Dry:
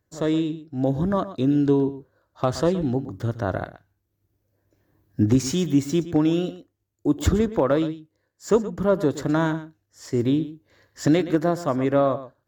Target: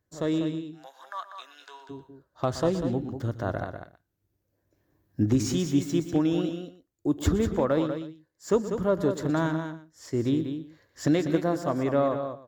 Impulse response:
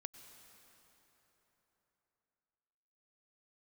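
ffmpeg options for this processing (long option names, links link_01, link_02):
-filter_complex "[0:a]asplit=3[link_01][link_02][link_03];[link_01]afade=type=out:start_time=0.66:duration=0.02[link_04];[link_02]highpass=frequency=1000:width=0.5412,highpass=frequency=1000:width=1.3066,afade=type=in:start_time=0.66:duration=0.02,afade=type=out:start_time=1.89:duration=0.02[link_05];[link_03]afade=type=in:start_time=1.89:duration=0.02[link_06];[link_04][link_05][link_06]amix=inputs=3:normalize=0,asplit=2[link_07][link_08];[link_08]aecho=0:1:194:0.398[link_09];[link_07][link_09]amix=inputs=2:normalize=0,volume=-4.5dB"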